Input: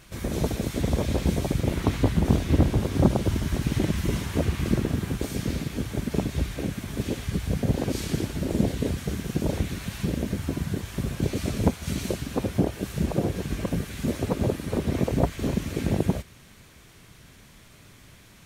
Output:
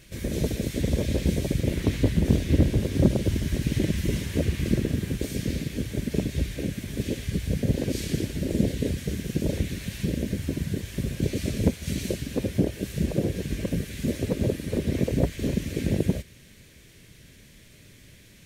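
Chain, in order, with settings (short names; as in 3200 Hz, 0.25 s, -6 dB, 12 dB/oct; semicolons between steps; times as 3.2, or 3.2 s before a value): band shelf 1000 Hz -11 dB 1.2 oct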